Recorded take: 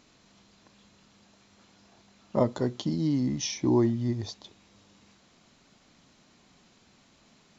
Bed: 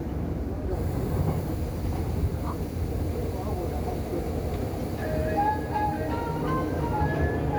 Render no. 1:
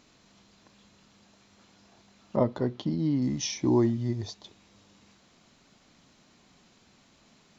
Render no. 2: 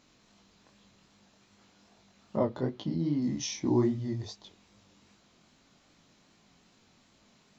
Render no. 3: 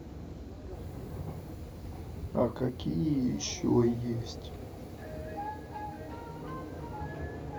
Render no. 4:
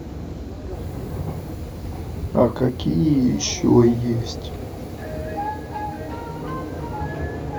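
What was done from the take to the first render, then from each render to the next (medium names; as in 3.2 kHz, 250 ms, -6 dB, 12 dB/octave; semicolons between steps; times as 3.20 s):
2.36–3.22 s: distance through air 180 m; 3.97–4.44 s: comb of notches 270 Hz
chorus 2.5 Hz, delay 18.5 ms, depth 5.8 ms
add bed -13.5 dB
trim +11.5 dB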